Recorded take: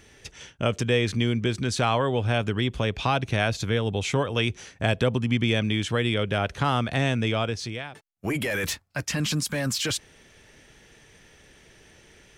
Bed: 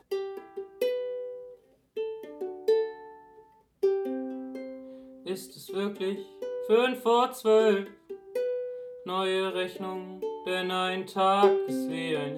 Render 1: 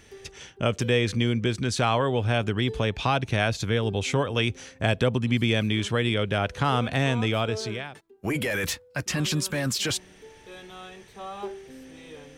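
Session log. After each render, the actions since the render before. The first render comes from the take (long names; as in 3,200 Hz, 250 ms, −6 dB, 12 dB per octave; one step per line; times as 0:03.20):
mix in bed −14.5 dB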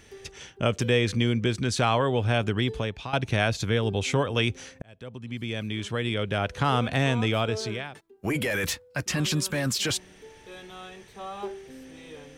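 0:02.60–0:03.13: fade out, to −14.5 dB
0:04.82–0:06.71: fade in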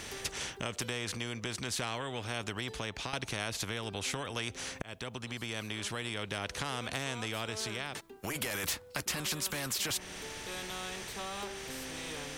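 downward compressor 2.5 to 1, threshold −37 dBFS, peak gain reduction 12.5 dB
every bin compressed towards the loudest bin 2 to 1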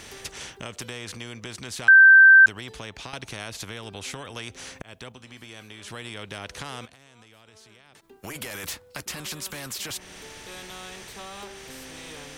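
0:01.88–0:02.46: beep over 1,560 Hz −8 dBFS
0:05.12–0:05.88: tuned comb filter 85 Hz, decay 0.28 s
0:06.85–0:08.11: downward compressor 16 to 1, threshold −48 dBFS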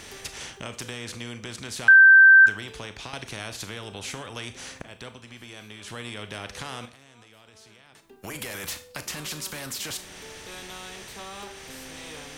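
four-comb reverb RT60 0.38 s, combs from 26 ms, DRR 9.5 dB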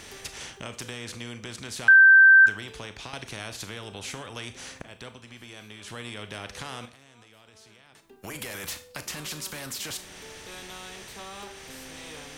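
level −1.5 dB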